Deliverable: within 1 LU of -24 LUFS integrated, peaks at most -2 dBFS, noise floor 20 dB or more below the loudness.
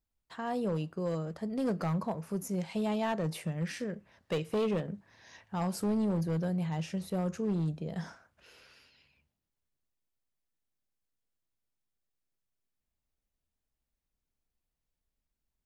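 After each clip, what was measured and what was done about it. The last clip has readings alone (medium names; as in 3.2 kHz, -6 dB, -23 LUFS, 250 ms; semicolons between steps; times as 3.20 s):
clipped samples 1.3%; clipping level -26.0 dBFS; loudness -34.0 LUFS; peak level -26.0 dBFS; loudness target -24.0 LUFS
-> clip repair -26 dBFS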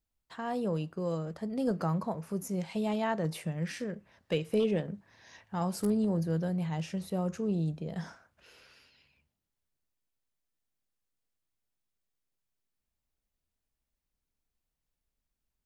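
clipped samples 0.0%; loudness -33.0 LUFS; peak level -17.5 dBFS; loudness target -24.0 LUFS
-> trim +9 dB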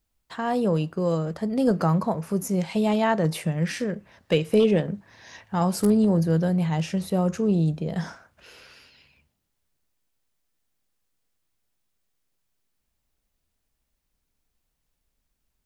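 loudness -24.0 LUFS; peak level -8.5 dBFS; noise floor -78 dBFS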